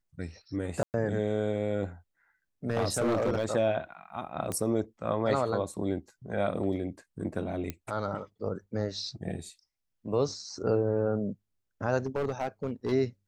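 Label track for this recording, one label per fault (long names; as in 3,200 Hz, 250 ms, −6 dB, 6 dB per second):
0.830000	0.940000	drop-out 109 ms
2.700000	3.460000	clipping −23 dBFS
4.520000	4.520000	click −19 dBFS
7.700000	7.700000	click −19 dBFS
12.060000	12.930000	clipping −25.5 dBFS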